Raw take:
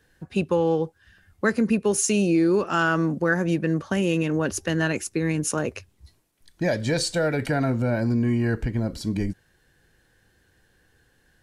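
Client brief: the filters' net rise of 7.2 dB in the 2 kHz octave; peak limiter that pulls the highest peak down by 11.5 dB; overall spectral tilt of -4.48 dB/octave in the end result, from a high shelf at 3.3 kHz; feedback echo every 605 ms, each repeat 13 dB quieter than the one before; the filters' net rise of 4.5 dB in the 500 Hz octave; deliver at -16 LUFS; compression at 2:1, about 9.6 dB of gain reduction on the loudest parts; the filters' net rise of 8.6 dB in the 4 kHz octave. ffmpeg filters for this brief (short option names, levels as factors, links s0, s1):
-af "equalizer=f=500:t=o:g=5,equalizer=f=2000:t=o:g=7,highshelf=f=3300:g=6,equalizer=f=4000:t=o:g=4.5,acompressor=threshold=0.0282:ratio=2,alimiter=limit=0.0631:level=0:latency=1,aecho=1:1:605|1210|1815:0.224|0.0493|0.0108,volume=7.5"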